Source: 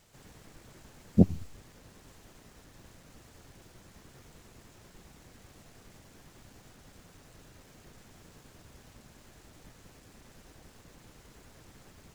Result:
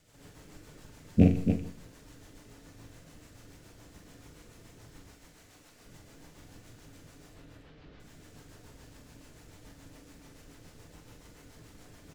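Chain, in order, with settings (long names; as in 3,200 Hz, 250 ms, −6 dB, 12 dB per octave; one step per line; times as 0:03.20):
loose part that buzzes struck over −29 dBFS, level −27 dBFS
0:05.08–0:05.81: low-shelf EQ 390 Hz −10 dB
0:07.34–0:08.00: low-pass filter 4,100 Hz 24 dB per octave
feedback delay network reverb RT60 0.64 s, low-frequency decay 0.95×, high-frequency decay 0.75×, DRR 4 dB
rotating-speaker cabinet horn 7 Hz
loudspeakers that aren't time-aligned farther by 15 metres −5 dB, 97 metres −6 dB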